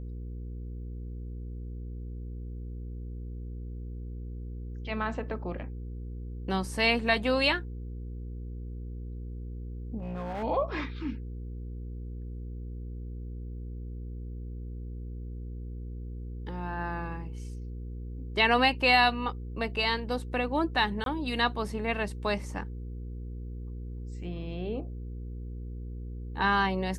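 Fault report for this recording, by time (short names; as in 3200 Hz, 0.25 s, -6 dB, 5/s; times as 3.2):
hum 60 Hz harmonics 8 -38 dBFS
9.99–10.44 clipped -31.5 dBFS
21.04–21.06 gap 22 ms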